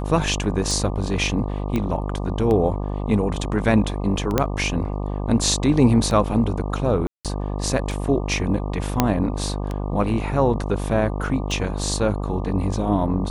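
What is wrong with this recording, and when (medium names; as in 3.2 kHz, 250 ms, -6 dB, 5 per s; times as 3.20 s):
buzz 50 Hz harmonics 24 -26 dBFS
tick 33 1/3 rpm
1.76 s: pop -12 dBFS
4.38 s: pop -4 dBFS
7.07–7.25 s: dropout 177 ms
9.00 s: pop -1 dBFS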